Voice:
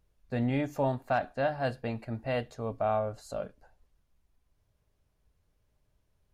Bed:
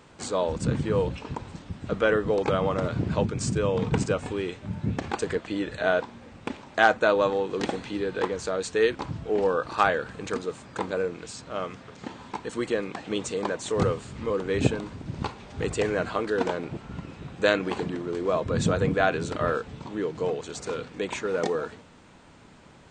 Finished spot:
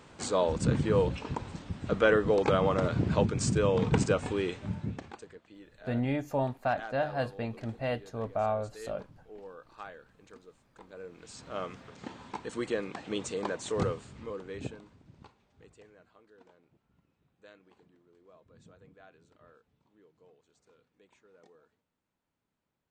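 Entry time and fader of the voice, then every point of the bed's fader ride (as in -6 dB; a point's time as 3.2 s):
5.55 s, -1.0 dB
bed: 4.69 s -1 dB
5.32 s -23 dB
10.82 s -23 dB
11.45 s -5 dB
13.76 s -5 dB
16.06 s -33.5 dB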